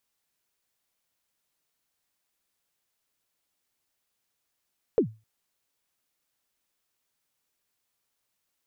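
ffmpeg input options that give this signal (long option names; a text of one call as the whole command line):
ffmpeg -f lavfi -i "aevalsrc='0.2*pow(10,-3*t/0.28)*sin(2*PI*(510*0.093/log(110/510)*(exp(log(110/510)*min(t,0.093)/0.093)-1)+110*max(t-0.093,0)))':duration=0.26:sample_rate=44100" out.wav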